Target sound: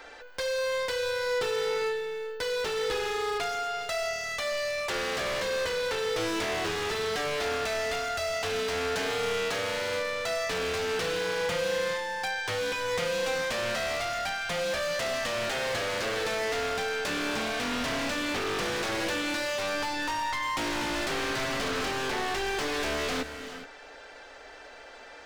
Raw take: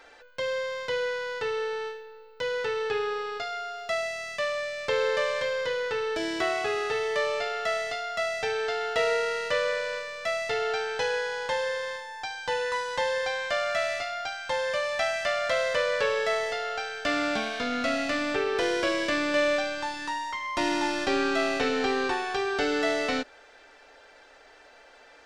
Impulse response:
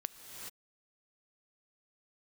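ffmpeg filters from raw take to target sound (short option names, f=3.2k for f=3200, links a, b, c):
-filter_complex "[0:a]acrossover=split=700|4900[a][b][c];[a]acompressor=threshold=-32dB:ratio=4[d];[b]acompressor=threshold=-34dB:ratio=4[e];[c]acompressor=threshold=-53dB:ratio=4[f];[d][e][f]amix=inputs=3:normalize=0,aeval=exprs='0.0266*(abs(mod(val(0)/0.0266+3,4)-2)-1)':c=same,asplit=2[g][h];[1:a]atrim=start_sample=2205,lowshelf=f=180:g=4.5[i];[h][i]afir=irnorm=-1:irlink=0,volume=1dB[j];[g][j]amix=inputs=2:normalize=0"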